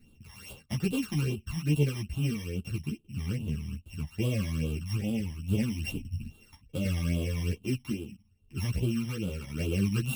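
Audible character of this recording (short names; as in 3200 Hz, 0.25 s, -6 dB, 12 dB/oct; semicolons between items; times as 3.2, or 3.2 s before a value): a buzz of ramps at a fixed pitch in blocks of 16 samples; phasing stages 12, 2.4 Hz, lowest notch 440–1900 Hz; tremolo saw down 0.73 Hz, depth 40%; a shimmering, thickened sound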